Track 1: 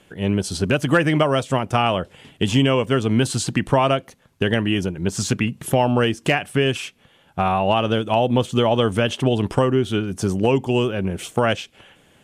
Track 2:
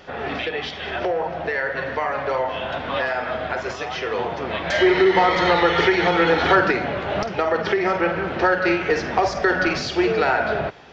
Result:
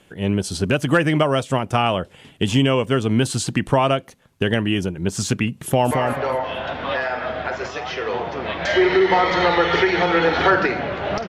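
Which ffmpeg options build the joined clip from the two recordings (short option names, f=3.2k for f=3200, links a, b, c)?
-filter_complex "[0:a]apad=whole_dur=11.28,atrim=end=11.28,atrim=end=5.912[a];[1:a]atrim=start=1.958:end=7.33[b];[a][b]acrossfade=d=0.004:c1=hsin:c2=hsin,asplit=2[c][d];[d]afade=t=in:st=5.62:d=0.01,afade=t=out:st=5.91:d=0.01,aecho=0:1:220|440|660|880:0.595662|0.178699|0.0536096|0.0160829[e];[c][e]amix=inputs=2:normalize=0"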